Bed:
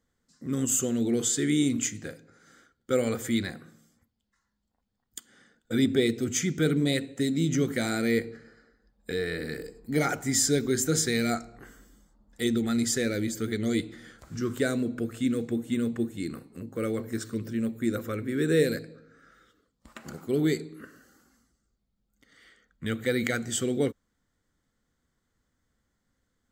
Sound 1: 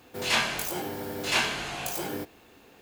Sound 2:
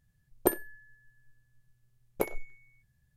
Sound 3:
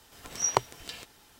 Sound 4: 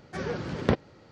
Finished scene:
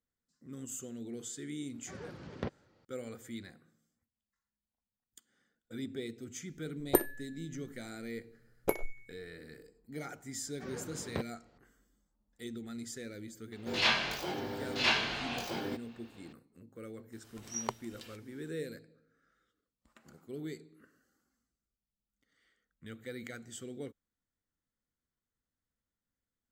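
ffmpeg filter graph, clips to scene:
ffmpeg -i bed.wav -i cue0.wav -i cue1.wav -i cue2.wav -i cue3.wav -filter_complex "[4:a]asplit=2[link_01][link_02];[0:a]volume=-16.5dB[link_03];[link_02]highpass=61[link_04];[1:a]highshelf=frequency=6400:width_type=q:width=1.5:gain=-12.5[link_05];[link_01]atrim=end=1.11,asetpts=PTS-STARTPTS,volume=-14dB,afade=type=in:duration=0.004:curve=hsin,afade=type=out:start_time=1.106:duration=0.004:curve=hsin,adelay=1740[link_06];[2:a]atrim=end=3.16,asetpts=PTS-STARTPTS,volume=-0.5dB,afade=type=in:duration=0.004:curve=hsin,afade=type=out:start_time=3.156:duration=0.004:curve=hsin,adelay=6480[link_07];[link_04]atrim=end=1.11,asetpts=PTS-STARTPTS,volume=-12.5dB,afade=type=in:duration=0.004:curve=hsin,afade=type=out:start_time=1.106:duration=0.004:curve=hsin,adelay=10470[link_08];[link_05]atrim=end=2.81,asetpts=PTS-STARTPTS,volume=-4dB,afade=type=in:duration=0.004:curve=hsin,afade=type=out:start_time=2.806:duration=0.004:curve=hsin,adelay=13520[link_09];[3:a]atrim=end=1.39,asetpts=PTS-STARTPTS,volume=-11dB,afade=type=in:duration=0.004:curve=hsin,afade=type=out:start_time=1.386:duration=0.004:curve=hsin,adelay=17120[link_10];[link_03][link_06][link_07][link_08][link_09][link_10]amix=inputs=6:normalize=0" out.wav

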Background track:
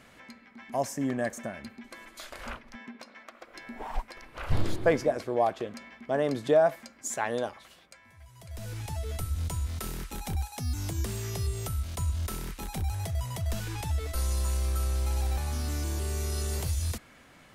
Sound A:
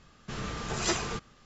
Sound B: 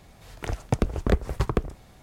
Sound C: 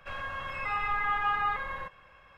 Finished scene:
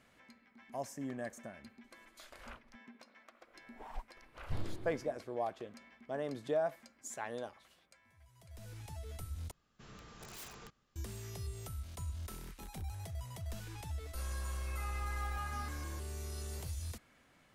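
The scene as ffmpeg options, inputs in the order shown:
ffmpeg -i bed.wav -i cue0.wav -i cue1.wav -i cue2.wav -filter_complex "[0:a]volume=-11.5dB[link_01];[1:a]aeval=exprs='(mod(16.8*val(0)+1,2)-1)/16.8':channel_layout=same[link_02];[link_01]asplit=2[link_03][link_04];[link_03]atrim=end=9.514[link_05];[link_02]atrim=end=1.45,asetpts=PTS-STARTPTS,volume=-18dB[link_06];[link_04]atrim=start=10.956[link_07];[3:a]atrim=end=2.37,asetpts=PTS-STARTPTS,volume=-15dB,afade=type=in:duration=0.004:curve=hsin,afade=type=out:start_time=2.366:duration=0.004:curve=hsin,adelay=622692S[link_08];[link_05][link_06]acrossfade=duration=0.004:curve1=hsin:curve2=hsin[link_09];[link_09][link_07]acrossfade=duration=0.004:curve1=hsin:curve2=hsin[link_10];[link_10][link_08]amix=inputs=2:normalize=0" out.wav

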